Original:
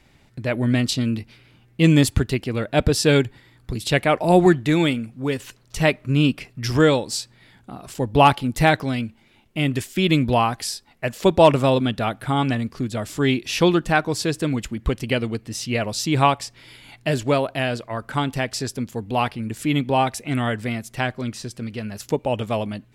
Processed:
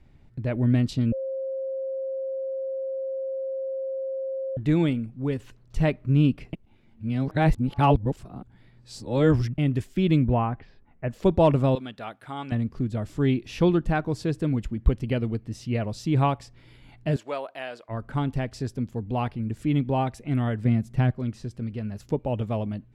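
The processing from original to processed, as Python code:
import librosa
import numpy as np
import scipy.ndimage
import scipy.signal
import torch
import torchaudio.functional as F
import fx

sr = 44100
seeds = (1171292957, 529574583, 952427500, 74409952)

y = fx.lowpass(x, sr, hz=2500.0, slope=24, at=(10.25, 11.11))
y = fx.highpass(y, sr, hz=1100.0, slope=6, at=(11.75, 12.52))
y = fx.highpass(y, sr, hz=670.0, slope=12, at=(17.16, 17.89))
y = fx.peak_eq(y, sr, hz=160.0, db=10.0, octaves=1.5, at=(20.65, 21.11))
y = fx.edit(y, sr, fx.bleep(start_s=1.12, length_s=3.45, hz=533.0, db=-21.5),
    fx.reverse_span(start_s=6.53, length_s=3.05), tone=tone)
y = fx.tilt_eq(y, sr, slope=-3.0)
y = F.gain(torch.from_numpy(y), -8.5).numpy()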